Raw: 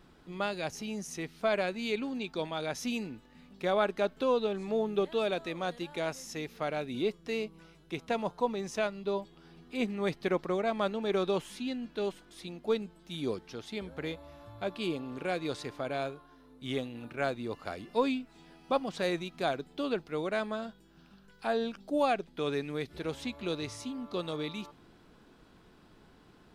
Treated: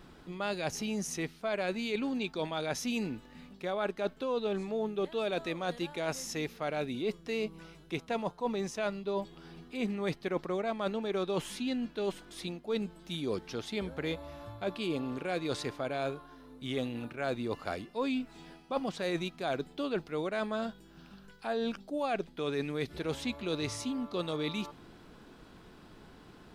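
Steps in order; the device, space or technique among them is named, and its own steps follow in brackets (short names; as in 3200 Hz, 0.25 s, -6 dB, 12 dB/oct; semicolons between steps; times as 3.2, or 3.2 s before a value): compression on the reversed sound (reverse; compressor 6:1, threshold -35 dBFS, peak gain reduction 12.5 dB; reverse); gain +5 dB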